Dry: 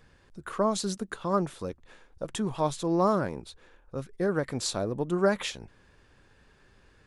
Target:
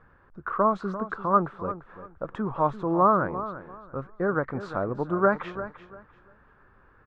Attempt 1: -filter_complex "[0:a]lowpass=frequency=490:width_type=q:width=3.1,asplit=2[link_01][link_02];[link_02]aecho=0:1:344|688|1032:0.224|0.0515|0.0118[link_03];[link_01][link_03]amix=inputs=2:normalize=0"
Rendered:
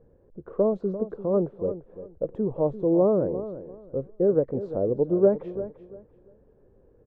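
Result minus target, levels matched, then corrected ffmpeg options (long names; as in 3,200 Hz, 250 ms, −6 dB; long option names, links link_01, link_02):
1,000 Hz band −16.0 dB
-filter_complex "[0:a]lowpass=frequency=1300:width_type=q:width=3.1,asplit=2[link_01][link_02];[link_02]aecho=0:1:344|688|1032:0.224|0.0515|0.0118[link_03];[link_01][link_03]amix=inputs=2:normalize=0"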